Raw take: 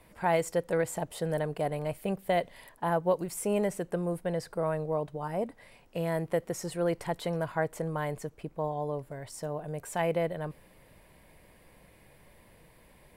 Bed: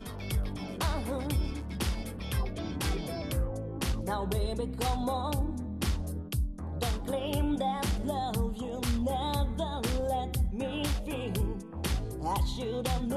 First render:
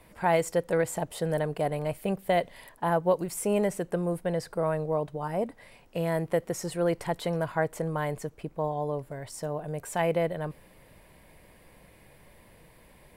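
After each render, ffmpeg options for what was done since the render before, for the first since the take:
-af "volume=1.33"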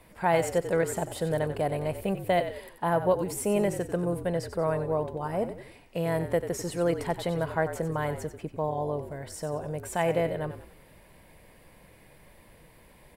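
-filter_complex "[0:a]asplit=5[s0][s1][s2][s3][s4];[s1]adelay=92,afreqshift=-46,volume=0.299[s5];[s2]adelay=184,afreqshift=-92,volume=0.126[s6];[s3]adelay=276,afreqshift=-138,volume=0.0525[s7];[s4]adelay=368,afreqshift=-184,volume=0.0221[s8];[s0][s5][s6][s7][s8]amix=inputs=5:normalize=0"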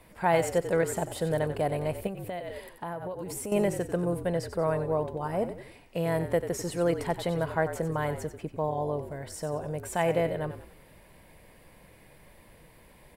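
-filter_complex "[0:a]asettb=1/sr,asplit=3[s0][s1][s2];[s0]atrim=end=2.074[s3];[s1]atrim=start=2.07:end=3.52,asetpts=PTS-STARTPTS,afade=t=in:d=0.004:c=qsin,afade=t=out:st=1.446:d=0.004:c=qsin,acompressor=threshold=0.0251:ratio=8:attack=3.2:release=140:knee=1:detection=peak[s4];[s2]atrim=start=3.516[s5];[s3][s4]acrossfade=d=0.004:c1=hsin:c2=qsin[s6];[s6][s5]acrossfade=d=0.004:c1=qsin:c2=hsin"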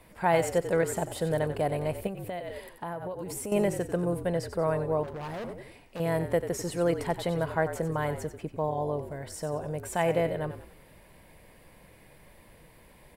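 -filter_complex "[0:a]asettb=1/sr,asplit=3[s0][s1][s2];[s0]atrim=end=5.034[s3];[s1]atrim=start=5.03:end=6,asetpts=PTS-STARTPTS,afade=t=in:d=0.004:c=qsin,afade=t=out:st=0.966:d=0.004:c=qsin,volume=53.1,asoftclip=hard,volume=0.0188[s4];[s2]atrim=start=5.996[s5];[s3][s4]acrossfade=d=0.004:c1=hsin:c2=qsin[s6];[s6][s5]acrossfade=d=0.004:c1=qsin:c2=hsin"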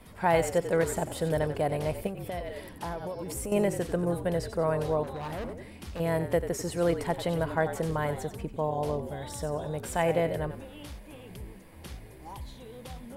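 -filter_complex "[1:a]volume=0.237[s0];[0:a][s0]amix=inputs=2:normalize=0"

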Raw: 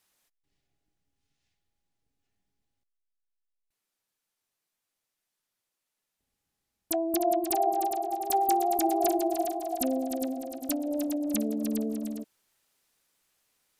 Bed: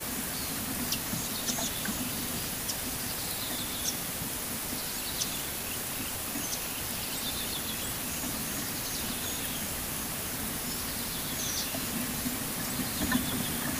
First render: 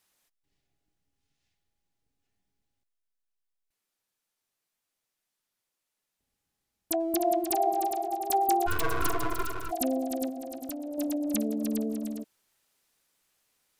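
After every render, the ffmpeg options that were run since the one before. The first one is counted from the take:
-filter_complex "[0:a]asettb=1/sr,asplit=3[s0][s1][s2];[s0]atrim=end=7.004[s3];[s1]atrim=start=7:end=8.08,asetpts=PTS-STARTPTS,afade=t=in:d=0.004:c=qsin,afade=t=out:st=1.076:d=0.004:c=qsin,aeval=exprs='sgn(val(0))*max(abs(val(0))-0.00112,0)':c=same[s4];[s2]atrim=start=8.076[s5];[s3][s4]acrossfade=d=0.004:c1=hsin:c2=qsin[s6];[s6][s5]acrossfade=d=0.004:c1=qsin:c2=hsin,asplit=3[s7][s8][s9];[s7]afade=t=out:st=8.66:d=0.02[s10];[s8]aeval=exprs='abs(val(0))':c=same,afade=t=in:st=8.66:d=0.02,afade=t=out:st=9.7:d=0.02[s11];[s9]afade=t=in:st=9.7:d=0.02[s12];[s10][s11][s12]amix=inputs=3:normalize=0,asettb=1/sr,asplit=3[s13][s14][s15];[s13]atrim=end=10.294[s16];[s14]atrim=start=10.29:end=10.98,asetpts=PTS-STARTPTS,afade=t=in:d=0.004:c=qsin,afade=t=out:st=0.686:d=0.004:c=qsin,acompressor=threshold=0.02:ratio=4:attack=3.2:release=140:knee=1:detection=peak[s17];[s15]atrim=start=10.976[s18];[s16][s17]acrossfade=d=0.004:c1=hsin:c2=qsin[s19];[s19][s18]acrossfade=d=0.004:c1=qsin:c2=hsin"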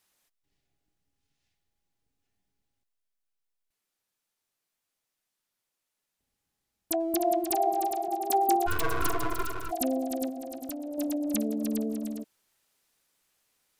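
-filter_complex "[0:a]asettb=1/sr,asplit=3[s0][s1][s2];[s0]atrim=end=8.084[s3];[s1]atrim=start=8.08:end=8.56,asetpts=PTS-STARTPTS,afade=t=in:d=0.004:c=qsin,afade=t=out:st=0.476:d=0.004:c=qsin,highpass=f=220:t=q:w=1.7[s4];[s2]atrim=start=8.556[s5];[s3][s4]acrossfade=d=0.004:c1=hsin:c2=qsin[s6];[s6][s5]acrossfade=d=0.004:c1=qsin:c2=hsin"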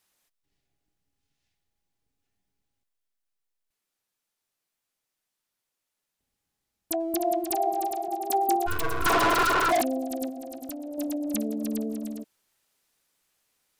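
-filter_complex "[0:a]asettb=1/sr,asplit=3[s0][s1][s2];[s0]atrim=end=9.064[s3];[s1]atrim=start=9.06:end=9.82,asetpts=PTS-STARTPTS,afade=t=in:d=0.004:c=qsin,afade=t=out:st=0.756:d=0.004:c=qsin,asplit=2[s4][s5];[s5]highpass=f=720:p=1,volume=44.7,asoftclip=type=tanh:threshold=0.188[s6];[s4][s6]amix=inputs=2:normalize=0,lowpass=f=3300:p=1,volume=0.501[s7];[s2]atrim=start=9.816[s8];[s3][s7]acrossfade=d=0.004:c1=hsin:c2=qsin[s9];[s9][s8]acrossfade=d=0.004:c1=qsin:c2=hsin"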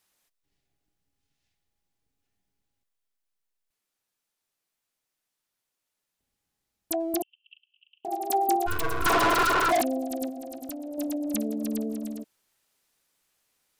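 -filter_complex "[0:a]asettb=1/sr,asplit=3[s0][s1][s2];[s0]atrim=end=7.224[s3];[s1]atrim=start=7.22:end=8.05,asetpts=PTS-STARTPTS,afade=t=in:d=0.004:c=qsin,afade=t=out:st=0.826:d=0.004:c=qsin,asuperpass=centerf=2900:order=8:qfactor=5.4[s4];[s2]atrim=start=8.046[s5];[s3][s4]acrossfade=d=0.004:c1=hsin:c2=qsin[s6];[s6][s5]acrossfade=d=0.004:c1=qsin:c2=hsin"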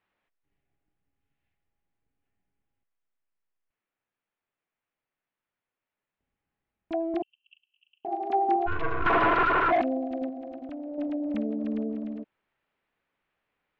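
-af "lowpass=f=2600:w=0.5412,lowpass=f=2600:w=1.3066"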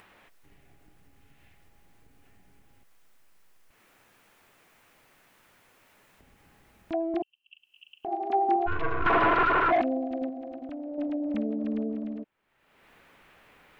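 -af "acompressor=mode=upward:threshold=0.0126:ratio=2.5"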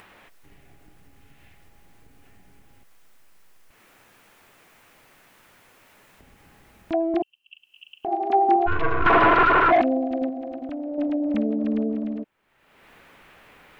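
-af "volume=2"

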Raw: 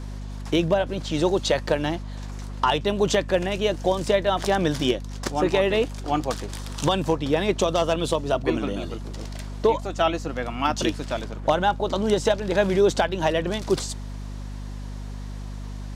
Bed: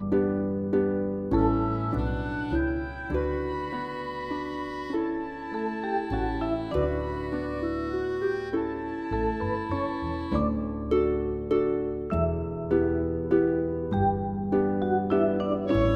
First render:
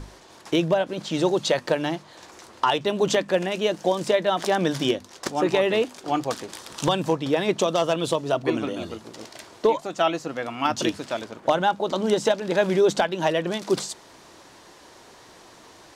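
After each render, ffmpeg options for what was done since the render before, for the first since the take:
-af "bandreject=f=50:t=h:w=6,bandreject=f=100:t=h:w=6,bandreject=f=150:t=h:w=6,bandreject=f=200:t=h:w=6,bandreject=f=250:t=h:w=6"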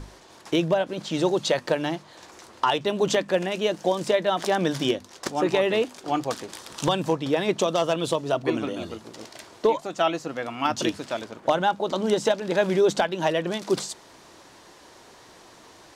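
-af "volume=0.891"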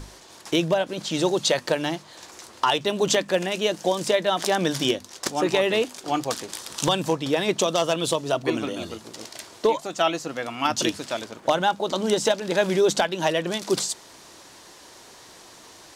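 -af "highshelf=f=3400:g=8.5"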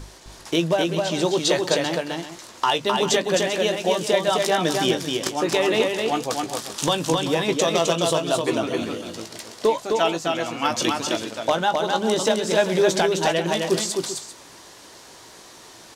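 -filter_complex "[0:a]asplit=2[s0][s1];[s1]adelay=18,volume=0.299[s2];[s0][s2]amix=inputs=2:normalize=0,aecho=1:1:260|392:0.668|0.237"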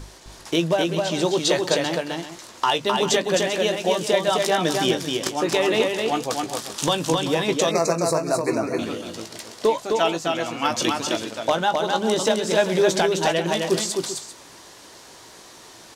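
-filter_complex "[0:a]asettb=1/sr,asplit=3[s0][s1][s2];[s0]atrim=end=7.714[s3];[s1]atrim=start=7.71:end=8.79,asetpts=PTS-STARTPTS,afade=t=in:d=0.004:c=qsin,afade=t=out:st=1.076:d=0.004:c=qsin,asuperstop=centerf=3200:order=8:qfactor=2[s4];[s2]atrim=start=8.786[s5];[s3][s4]acrossfade=d=0.004:c1=hsin:c2=qsin[s6];[s6][s5]acrossfade=d=0.004:c1=qsin:c2=hsin"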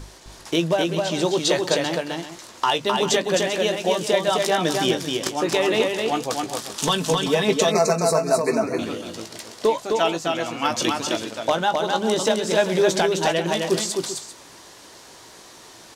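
-filter_complex "[0:a]asettb=1/sr,asplit=3[s0][s1][s2];[s0]atrim=end=6.824[s3];[s1]atrim=start=6.82:end=8.64,asetpts=PTS-STARTPTS,afade=t=in:d=0.004:c=qsin,afade=t=out:st=1.816:d=0.004:c=qsin,aecho=1:1:4.6:0.7,atrim=end_sample=80262[s4];[s2]atrim=start=8.636[s5];[s3][s4]acrossfade=d=0.004:c1=hsin:c2=qsin[s6];[s6][s5]acrossfade=d=0.004:c1=qsin:c2=hsin"

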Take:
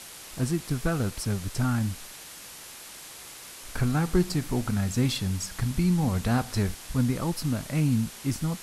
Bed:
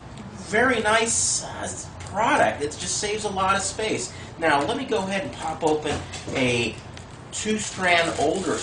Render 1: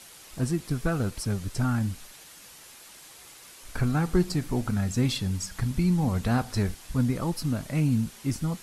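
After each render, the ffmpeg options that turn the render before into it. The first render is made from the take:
-af "afftdn=nr=6:nf=-44"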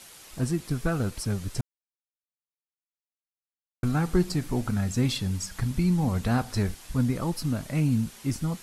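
-filter_complex "[0:a]asplit=3[s0][s1][s2];[s0]atrim=end=1.61,asetpts=PTS-STARTPTS,afade=t=out:st=1.606:d=0.004:c=hsin[s3];[s1]atrim=start=1.61:end=3.83,asetpts=PTS-STARTPTS,volume=0[s4];[s2]atrim=start=3.83,asetpts=PTS-STARTPTS,afade=t=in:d=0.004:c=hsin[s5];[s3][s4][s5]concat=n=3:v=0:a=1"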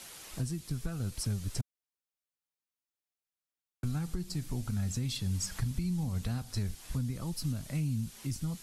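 -filter_complex "[0:a]alimiter=limit=0.0841:level=0:latency=1:release=480,acrossover=split=180|3000[s0][s1][s2];[s1]acompressor=threshold=0.00562:ratio=4[s3];[s0][s3][s2]amix=inputs=3:normalize=0"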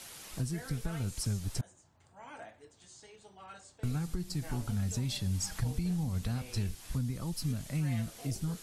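-filter_complex "[1:a]volume=0.0355[s0];[0:a][s0]amix=inputs=2:normalize=0"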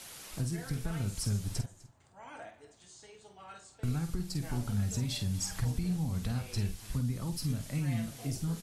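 -filter_complex "[0:a]asplit=2[s0][s1];[s1]adelay=49,volume=0.376[s2];[s0][s2]amix=inputs=2:normalize=0,aecho=1:1:252:0.0841"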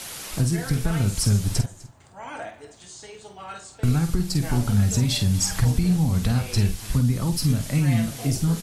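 -af "volume=3.98"

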